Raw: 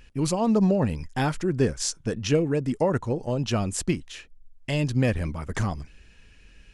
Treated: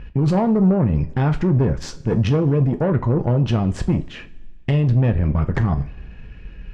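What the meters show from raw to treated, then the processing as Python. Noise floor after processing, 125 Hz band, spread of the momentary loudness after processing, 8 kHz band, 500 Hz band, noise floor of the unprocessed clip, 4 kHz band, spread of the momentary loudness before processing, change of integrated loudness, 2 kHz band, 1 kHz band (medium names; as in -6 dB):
-39 dBFS, +10.0 dB, 8 LU, under -10 dB, +3.0 dB, -53 dBFS, -2.5 dB, 8 LU, +6.5 dB, +0.5 dB, +3.5 dB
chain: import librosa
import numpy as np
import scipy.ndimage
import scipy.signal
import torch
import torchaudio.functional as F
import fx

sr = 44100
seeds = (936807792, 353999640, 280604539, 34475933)

p1 = scipy.signal.sosfilt(scipy.signal.bessel(2, 1700.0, 'lowpass', norm='mag', fs=sr, output='sos'), x)
p2 = fx.low_shelf(p1, sr, hz=280.0, db=8.0)
p3 = fx.over_compress(p2, sr, threshold_db=-25.0, ratio=-0.5)
p4 = p2 + (p3 * librosa.db_to_amplitude(2.0))
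p5 = fx.tube_stage(p4, sr, drive_db=14.0, bias=0.5)
p6 = fx.rev_double_slope(p5, sr, seeds[0], early_s=0.28, late_s=1.5, knee_db=-20, drr_db=6.5)
y = p6 * librosa.db_to_amplitude(1.0)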